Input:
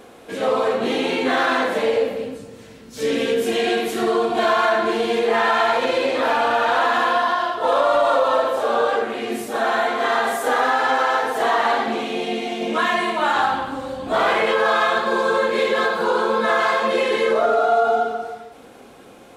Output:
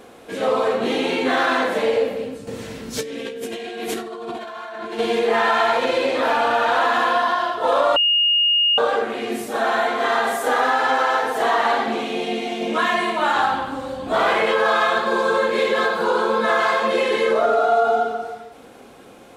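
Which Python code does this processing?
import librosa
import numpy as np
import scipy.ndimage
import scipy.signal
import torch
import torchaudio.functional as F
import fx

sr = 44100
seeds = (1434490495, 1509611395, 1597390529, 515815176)

y = fx.over_compress(x, sr, threshold_db=-30.0, ratio=-1.0, at=(2.47, 4.99))
y = fx.edit(y, sr, fx.bleep(start_s=7.96, length_s=0.82, hz=2850.0, db=-14.0), tone=tone)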